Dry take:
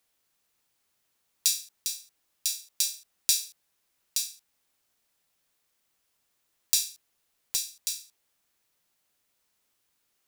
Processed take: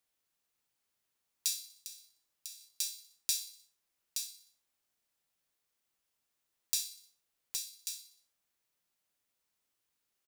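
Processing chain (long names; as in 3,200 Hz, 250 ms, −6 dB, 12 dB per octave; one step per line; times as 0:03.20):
0:01.74–0:02.61: downward compressor 6 to 1, threshold −34 dBFS, peak gain reduction 10.5 dB
repeating echo 61 ms, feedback 55%, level −15 dB
level −8.5 dB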